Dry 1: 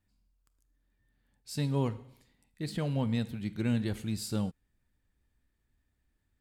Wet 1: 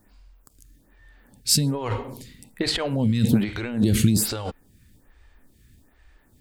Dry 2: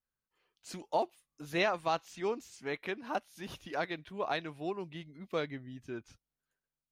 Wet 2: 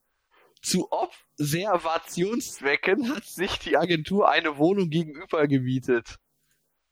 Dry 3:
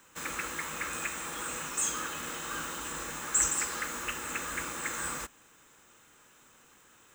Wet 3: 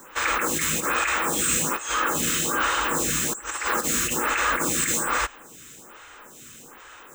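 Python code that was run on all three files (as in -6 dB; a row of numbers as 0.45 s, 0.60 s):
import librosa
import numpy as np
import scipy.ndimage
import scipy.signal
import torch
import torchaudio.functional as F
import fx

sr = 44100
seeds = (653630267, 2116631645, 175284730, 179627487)

y = fx.over_compress(x, sr, threshold_db=-37.0, ratio=-1.0)
y = fx.stagger_phaser(y, sr, hz=1.2)
y = y * 10.0 ** (-26 / 20.0) / np.sqrt(np.mean(np.square(y)))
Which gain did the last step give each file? +19.5 dB, +18.0 dB, +15.5 dB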